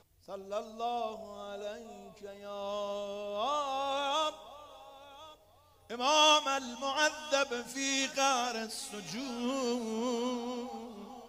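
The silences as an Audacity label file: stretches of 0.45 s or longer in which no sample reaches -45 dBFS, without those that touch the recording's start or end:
5.330000	5.900000	silence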